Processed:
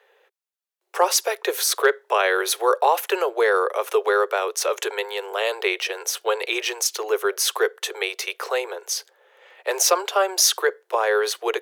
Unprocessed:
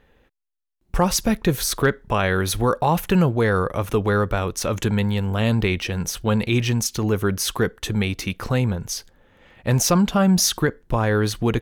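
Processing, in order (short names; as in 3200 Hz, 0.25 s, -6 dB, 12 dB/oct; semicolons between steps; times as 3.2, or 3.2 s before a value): steep high-pass 380 Hz 96 dB/oct; gain +2.5 dB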